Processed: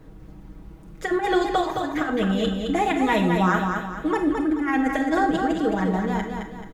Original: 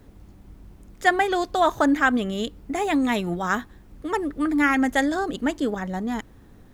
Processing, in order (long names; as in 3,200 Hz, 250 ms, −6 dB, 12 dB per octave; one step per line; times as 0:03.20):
high-shelf EQ 3,500 Hz −9.5 dB
comb filter 6.3 ms, depth 73%
compressor whose output falls as the input rises −22 dBFS, ratio −0.5
repeating echo 216 ms, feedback 40%, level −5 dB
on a send at −7 dB: convolution reverb RT60 0.45 s, pre-delay 28 ms